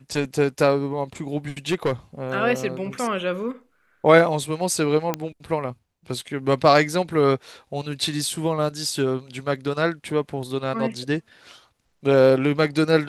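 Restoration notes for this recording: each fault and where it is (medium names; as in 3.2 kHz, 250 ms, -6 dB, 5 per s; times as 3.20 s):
1.69–1.93 s: clipped -16.5 dBFS
5.14 s: pop -9 dBFS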